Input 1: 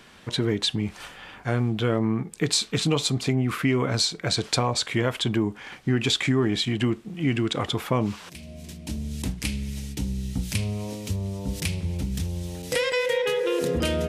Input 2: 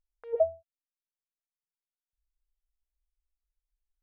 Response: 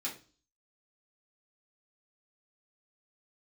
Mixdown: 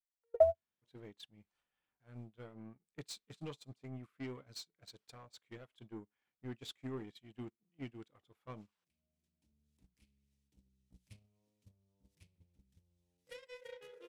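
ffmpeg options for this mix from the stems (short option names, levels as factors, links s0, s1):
-filter_complex "[0:a]asoftclip=type=tanh:threshold=0.0944,adelay=550,volume=0.398[s0];[1:a]equalizer=f=310:w=3:g=-9,aphaser=in_gain=1:out_gain=1:delay=3:decay=0.56:speed=1.5:type=triangular,volume=1.19[s1];[s0][s1]amix=inputs=2:normalize=0,dynaudnorm=f=280:g=3:m=1.41,agate=range=0.00794:threshold=0.0398:ratio=16:detection=peak"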